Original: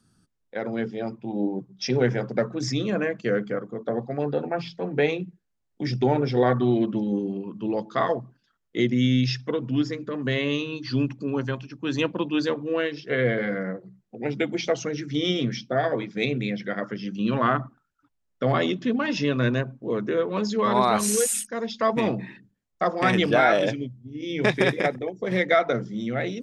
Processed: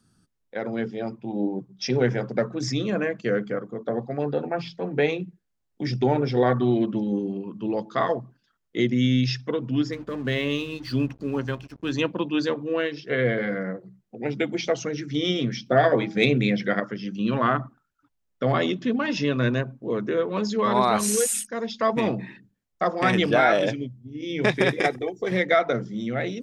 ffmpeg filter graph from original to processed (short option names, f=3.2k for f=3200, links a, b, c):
-filter_complex "[0:a]asettb=1/sr,asplit=3[a][b][c];[a]atrim=end=9.924[d];[b]atrim=start=9.92:end=11.92,asetpts=PTS-STARTPTS,afade=t=in:d=0.004:c=qsin,afade=t=out:st=1.996:d=0.004:c=qsin,aeval=exprs='val(0)+0.00251*(sin(2*PI*50*n/s)+sin(2*PI*2*50*n/s)/2+sin(2*PI*3*50*n/s)/3+sin(2*PI*4*50*n/s)/4+sin(2*PI*5*50*n/s)/5)':c=same,aeval=exprs='sgn(val(0))*max(abs(val(0))-0.00398,0)':c=same[e];[c]atrim=start=11.916[f];[d][e]acrossfade=d=0.004:c1=hsin:c2=qsin[g];[g][f]acrossfade=d=0.004:c1=qsin:c2=hsin,asettb=1/sr,asplit=3[h][i][j];[h]atrim=end=15.664[k];[i]atrim=start=15.66:end=16.8,asetpts=PTS-STARTPTS,afade=t=in:d=0.004:c=qsin,afade=t=out:st=1.136:d=0.004:c=qsin,bandreject=f=160.2:t=h:w=4,bandreject=f=320.4:t=h:w=4,bandreject=f=480.6:t=h:w=4,bandreject=f=640.8:t=h:w=4,bandreject=f=801:t=h:w=4,acontrast=44[l];[j]atrim=start=16.796[m];[k][l]acrossfade=d=0.004:c1=hsin:c2=qsin[n];[n][m]acrossfade=d=0.004:c1=qsin:c2=hsin,asettb=1/sr,asplit=3[o][p][q];[o]atrim=end=24.804[r];[p]atrim=start=24.8:end=25.31,asetpts=PTS-STARTPTS,afade=t=in:d=0.004:c=qsin,afade=t=out:st=0.506:d=0.004:c=qsin,highshelf=f=3.9k:g=8.5,aecho=1:1:2.6:0.46,atrim=end_sample=22491[s];[q]atrim=start=25.306[t];[r][s]acrossfade=d=0.004:c1=hsin:c2=qsin[u];[u][t]acrossfade=d=0.004:c1=qsin:c2=hsin"